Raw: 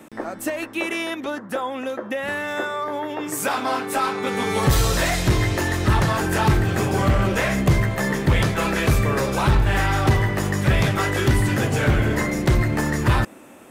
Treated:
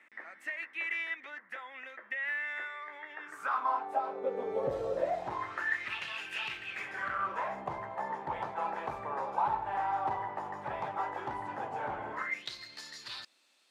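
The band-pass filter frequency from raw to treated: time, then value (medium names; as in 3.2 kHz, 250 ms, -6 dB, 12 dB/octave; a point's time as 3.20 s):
band-pass filter, Q 6.1
3.07 s 2 kHz
4.22 s 540 Hz
5.04 s 540 Hz
5.97 s 2.7 kHz
6.66 s 2.7 kHz
7.50 s 870 Hz
12.11 s 870 Hz
12.51 s 4.3 kHz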